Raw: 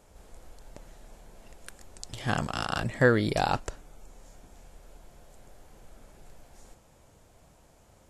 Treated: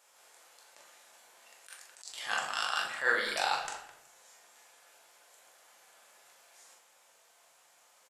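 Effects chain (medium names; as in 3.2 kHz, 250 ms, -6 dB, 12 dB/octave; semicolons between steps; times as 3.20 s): high-pass 1.2 kHz 12 dB/octave; doubling 42 ms -7 dB; speakerphone echo 210 ms, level -13 dB; simulated room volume 140 m³, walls mixed, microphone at 0.8 m; attacks held to a fixed rise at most 170 dB/s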